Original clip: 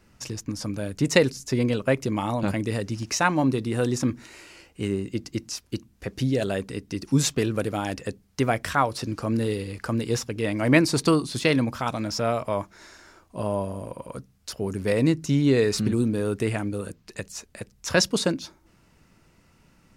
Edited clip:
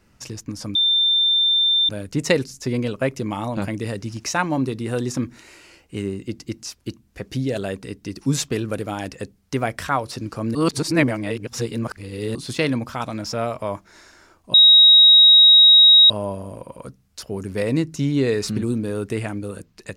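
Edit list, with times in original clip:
0:00.75: insert tone 3,580 Hz −14.5 dBFS 1.14 s
0:09.41–0:11.21: reverse
0:13.40: insert tone 3,800 Hz −7 dBFS 1.56 s

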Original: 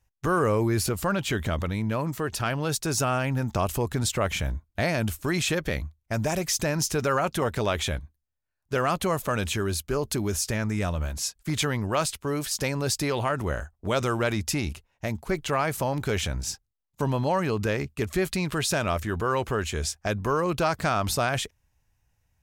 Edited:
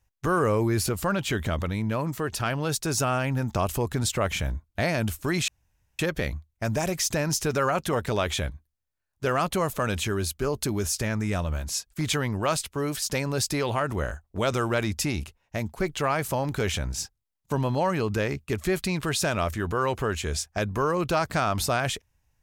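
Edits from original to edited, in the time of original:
0:05.48: splice in room tone 0.51 s

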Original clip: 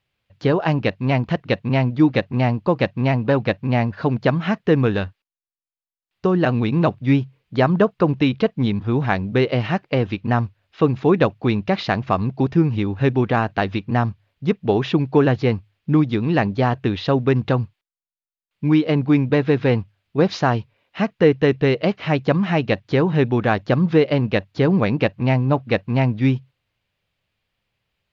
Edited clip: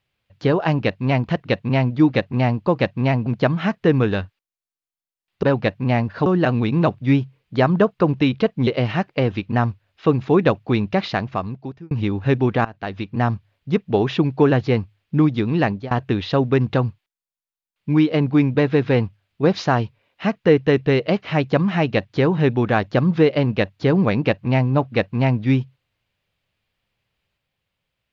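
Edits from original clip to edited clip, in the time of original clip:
0:03.26–0:04.09: move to 0:06.26
0:08.67–0:09.42: remove
0:11.73–0:12.66: fade out
0:13.40–0:14.03: fade in, from −19 dB
0:16.30–0:16.66: fade out equal-power, to −23.5 dB

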